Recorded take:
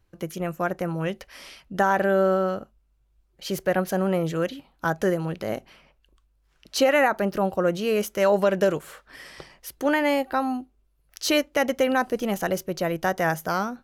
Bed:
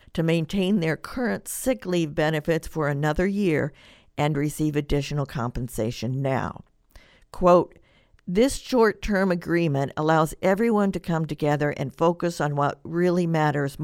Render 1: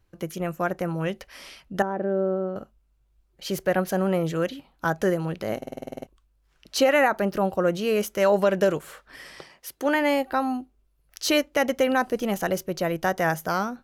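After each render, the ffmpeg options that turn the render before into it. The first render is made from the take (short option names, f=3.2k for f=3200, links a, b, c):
-filter_complex "[0:a]asettb=1/sr,asplit=3[a][b][c];[a]atrim=end=1.824[d];[b]atrim=start=1.82:end=2.56,asetpts=PTS-STARTPTS,afade=t=in:d=0.004:c=qsin,afade=t=out:st=0.736:d=0.004:c=qsin,bandpass=f=290:t=q:w=1.1[e];[c]atrim=start=2.556[f];[d][e]acrossfade=d=0.004:c1=hsin:c2=qsin[g];[g][f]acrossfade=d=0.004:c1=qsin:c2=hsin,asettb=1/sr,asplit=3[h][i][j];[h]atrim=end=9.384[k];[i]atrim=start=9.38:end=9.95,asetpts=PTS-STARTPTS,afade=t=in:d=0.004:c=qsin,afade=t=out:st=0.566:d=0.004:c=qsin,highpass=f=210:p=1[l];[j]atrim=start=9.946[m];[k][l]acrossfade=d=0.004:c1=hsin:c2=qsin[n];[n][m]acrossfade=d=0.004:c1=qsin:c2=hsin,asplit=11[o][p][q][r][s][t][u][v][w][x][y];[o]atrim=end=5.622[z];[p]atrim=start=5.568:end=5.622[aa];[q]atrim=start=5.568:end=5.622[ab];[r]atrim=start=5.568:end=5.622[ac];[s]atrim=start=5.568:end=5.622[ad];[t]atrim=start=5.568:end=5.622[ae];[u]atrim=start=5.568:end=5.622[af];[v]atrim=start=5.568:end=5.622[ag];[w]atrim=start=5.568:end=5.622[ah];[x]atrim=start=5.568:end=5.622[ai];[y]atrim=start=6.068[aj];[z][aa]acrossfade=d=0.004:c1=hsin:c2=hsin[ak];[ak][ab]acrossfade=d=0.004:c1=hsin:c2=hsin[al];[al][ac]acrossfade=d=0.004:c1=hsin:c2=hsin[am];[am][ad]acrossfade=d=0.004:c1=hsin:c2=hsin[an];[an][ae]acrossfade=d=0.004:c1=hsin:c2=hsin[ao];[ao][af]acrossfade=d=0.004:c1=hsin:c2=hsin[ap];[ap][ag]acrossfade=d=0.004:c1=hsin:c2=hsin[aq];[aq][ah]acrossfade=d=0.004:c1=hsin:c2=hsin[ar];[ar][ai]acrossfade=d=0.004:c1=hsin:c2=hsin[as];[as][aj]acrossfade=d=0.004:c1=hsin:c2=hsin"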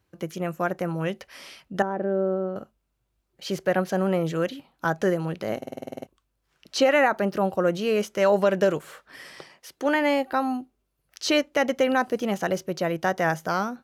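-filter_complex "[0:a]acrossover=split=7500[a][b];[b]acompressor=threshold=-51dB:ratio=4:attack=1:release=60[c];[a][c]amix=inputs=2:normalize=0,highpass=94"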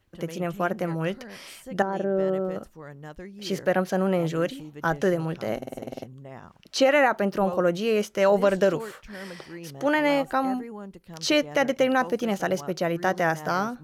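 -filter_complex "[1:a]volume=-18dB[a];[0:a][a]amix=inputs=2:normalize=0"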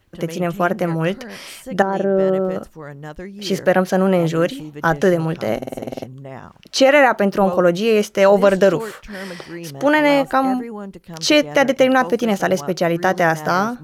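-af "volume=8dB,alimiter=limit=-3dB:level=0:latency=1"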